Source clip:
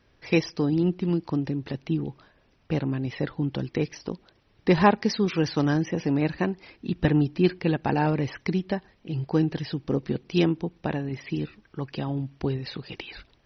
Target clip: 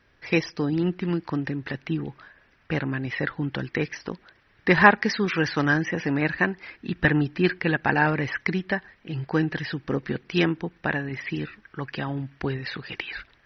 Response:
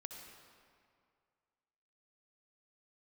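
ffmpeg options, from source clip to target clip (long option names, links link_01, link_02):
-af "asetnsamples=nb_out_samples=441:pad=0,asendcmd='0.74 equalizer g 14.5',equalizer=frequency=1700:width=1.2:gain=8,volume=-1.5dB"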